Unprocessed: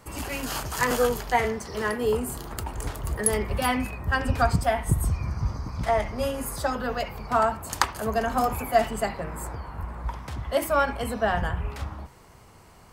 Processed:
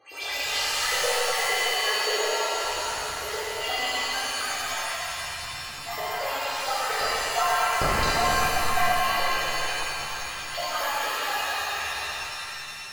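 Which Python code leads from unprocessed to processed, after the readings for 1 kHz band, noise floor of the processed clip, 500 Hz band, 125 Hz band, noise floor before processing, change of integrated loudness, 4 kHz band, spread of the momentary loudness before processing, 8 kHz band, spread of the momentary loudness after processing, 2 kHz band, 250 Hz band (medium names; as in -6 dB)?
+1.0 dB, -36 dBFS, -4.0 dB, -12.0 dB, -51 dBFS, +1.0 dB, +11.5 dB, 11 LU, +4.0 dB, 9 LU, +5.0 dB, -11.5 dB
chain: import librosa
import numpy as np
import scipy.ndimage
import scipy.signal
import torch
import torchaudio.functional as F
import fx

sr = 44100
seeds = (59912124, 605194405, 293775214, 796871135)

y = fx.low_shelf(x, sr, hz=190.0, db=8.0)
y = fx.echo_split(y, sr, split_hz=890.0, low_ms=86, high_ms=213, feedback_pct=52, wet_db=-7.5)
y = np.repeat(scipy.signal.resample_poly(y, 1, 3), 3)[:len(y)]
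y = fx.rider(y, sr, range_db=10, speed_s=0.5)
y = scipy.signal.sosfilt(scipy.signal.butter(2, 42.0, 'highpass', fs=sr, output='sos'), y)
y = y + 0.9 * np.pad(y, (int(2.5 * sr / 1000.0), 0))[:len(y)]
y = fx.filter_lfo_highpass(y, sr, shape='saw_up', hz=8.7, low_hz=540.0, high_hz=5500.0, q=5.4)
y = fx.tone_stack(y, sr, knobs='10-0-1')
y = fx.spec_gate(y, sr, threshold_db=-15, keep='strong')
y = fx.rev_shimmer(y, sr, seeds[0], rt60_s=3.0, semitones=7, shimmer_db=-2, drr_db=-11.5)
y = y * librosa.db_to_amplitude(9.0)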